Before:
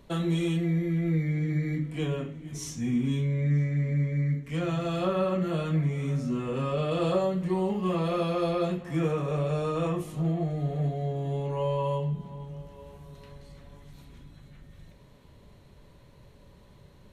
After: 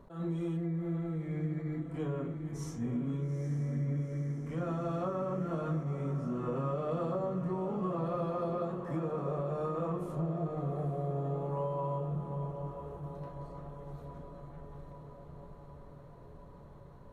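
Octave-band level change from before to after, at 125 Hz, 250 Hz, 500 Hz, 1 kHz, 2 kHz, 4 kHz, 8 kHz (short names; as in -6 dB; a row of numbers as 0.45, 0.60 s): -7.0 dB, -6.5 dB, -6.0 dB, -4.0 dB, -13.0 dB, under -15 dB, n/a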